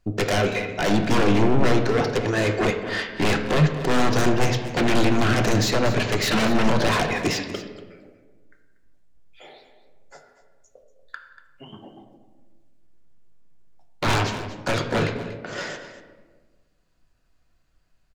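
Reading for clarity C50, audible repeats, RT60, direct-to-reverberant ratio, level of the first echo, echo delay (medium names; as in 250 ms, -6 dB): 7.0 dB, 1, 1.3 s, 3.5 dB, -14.0 dB, 238 ms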